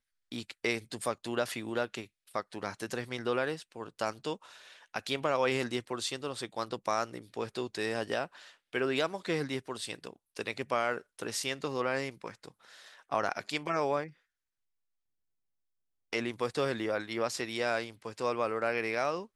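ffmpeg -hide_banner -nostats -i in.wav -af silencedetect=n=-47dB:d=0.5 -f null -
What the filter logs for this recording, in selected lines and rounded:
silence_start: 14.10
silence_end: 16.13 | silence_duration: 2.03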